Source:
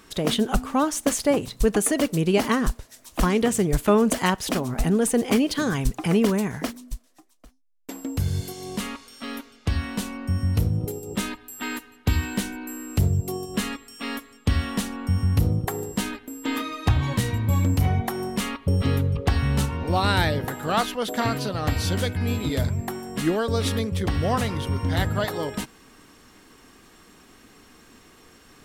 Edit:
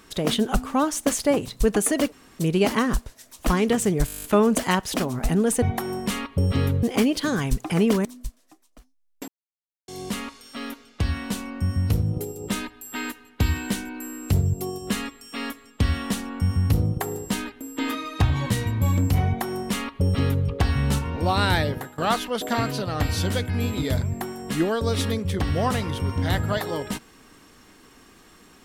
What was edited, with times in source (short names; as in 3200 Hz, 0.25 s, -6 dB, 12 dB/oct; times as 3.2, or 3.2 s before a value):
2.12 insert room tone 0.27 s
3.79 stutter 0.02 s, 10 plays
6.39–6.72 cut
7.95–8.55 mute
17.92–19.13 copy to 5.17
20.36–20.65 fade out, to -18.5 dB